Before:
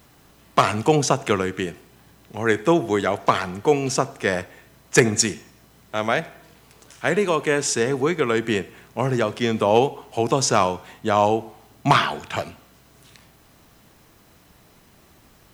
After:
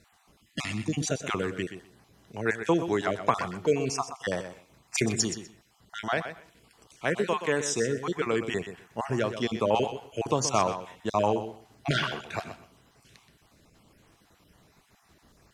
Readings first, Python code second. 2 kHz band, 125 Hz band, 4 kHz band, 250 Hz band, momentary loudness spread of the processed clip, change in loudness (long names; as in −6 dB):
−7.5 dB, −7.5 dB, −6.5 dB, −7.0 dB, 12 LU, −7.5 dB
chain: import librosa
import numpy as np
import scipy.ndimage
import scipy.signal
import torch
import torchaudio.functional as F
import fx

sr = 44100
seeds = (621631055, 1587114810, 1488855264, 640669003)

y = fx.spec_dropout(x, sr, seeds[0], share_pct=30)
y = fx.echo_feedback(y, sr, ms=125, feedback_pct=17, wet_db=-10.5)
y = fx.spec_box(y, sr, start_s=0.41, length_s=0.66, low_hz=360.0, high_hz=1700.0, gain_db=-16)
y = scipy.signal.sosfilt(scipy.signal.butter(2, 11000.0, 'lowpass', fs=sr, output='sos'), y)
y = y * librosa.db_to_amplitude(-6.0)